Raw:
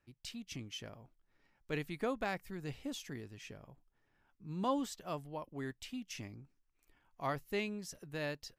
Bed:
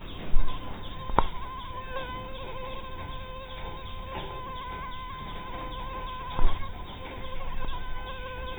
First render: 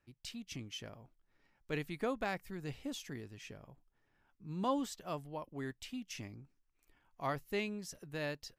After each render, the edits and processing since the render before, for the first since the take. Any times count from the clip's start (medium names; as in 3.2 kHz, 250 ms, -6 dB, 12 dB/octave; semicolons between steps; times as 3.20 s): no audible change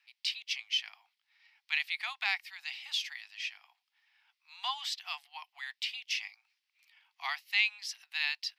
steep high-pass 750 Hz 96 dB/octave; high-order bell 3.2 kHz +15.5 dB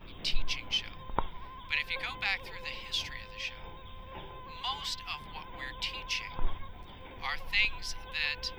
add bed -8.5 dB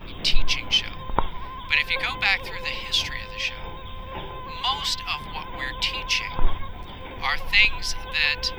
trim +10.5 dB; peak limiter -2 dBFS, peak gain reduction 2 dB